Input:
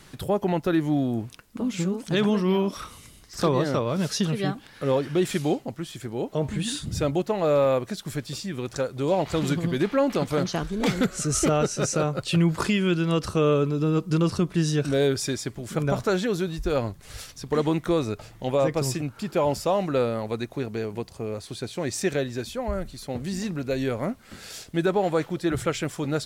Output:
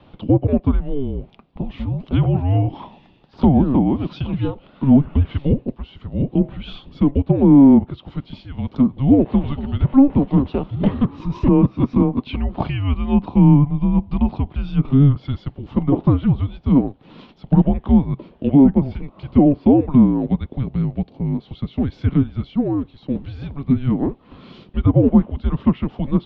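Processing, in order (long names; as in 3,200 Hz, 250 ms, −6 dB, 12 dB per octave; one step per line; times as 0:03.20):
graphic EQ with 10 bands 125 Hz −4 dB, 500 Hz +11 dB, 1,000 Hz +4 dB, 2,000 Hz −12 dB
treble cut that deepens with the level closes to 2,100 Hz, closed at −13 dBFS
single-sideband voice off tune −280 Hz 300–3,600 Hz
level +2.5 dB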